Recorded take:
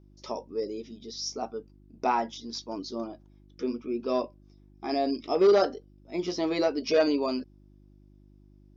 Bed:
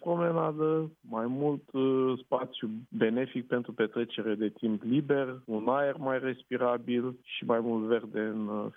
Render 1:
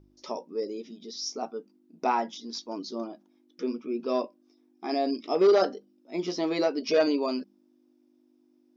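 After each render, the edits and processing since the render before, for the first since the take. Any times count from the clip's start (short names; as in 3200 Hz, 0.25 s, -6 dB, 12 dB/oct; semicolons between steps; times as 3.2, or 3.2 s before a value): de-hum 50 Hz, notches 4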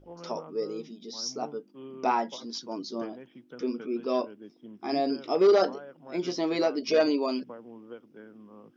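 add bed -16.5 dB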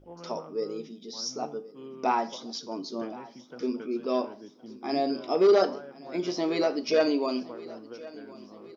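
feedback echo 1.068 s, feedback 54%, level -20 dB; Schroeder reverb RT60 0.44 s, combs from 28 ms, DRR 14.5 dB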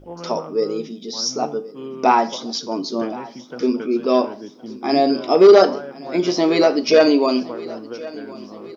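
gain +11 dB; limiter -2 dBFS, peak gain reduction 1.5 dB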